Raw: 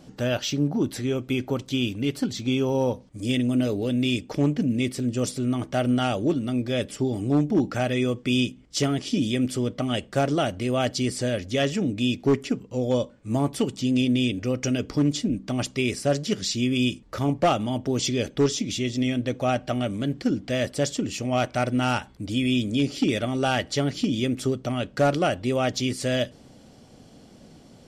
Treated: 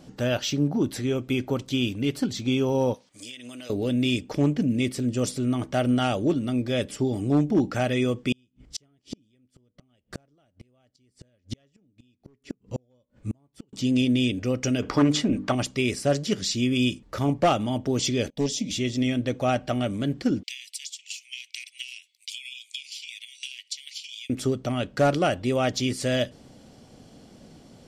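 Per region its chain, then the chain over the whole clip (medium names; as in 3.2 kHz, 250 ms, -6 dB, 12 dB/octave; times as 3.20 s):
2.94–3.70 s: high-pass 1 kHz 6 dB/octave + peaking EQ 4.6 kHz +7.5 dB 2.9 oct + compression 16:1, threshold -36 dBFS
8.32–13.73 s: bass shelf 120 Hz +9.5 dB + inverted gate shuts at -19 dBFS, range -42 dB
14.82–15.55 s: peaking EQ 1.2 kHz +13 dB 2.6 oct + hum notches 50/100/150/200/250/300/350/400/450/500 Hz
18.30–18.71 s: gate -41 dBFS, range -20 dB + static phaser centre 360 Hz, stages 6
20.43–24.30 s: steep high-pass 2.2 kHz 72 dB/octave + compression 10:1, threshold -36 dBFS + transient shaper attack +9 dB, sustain -3 dB
whole clip: none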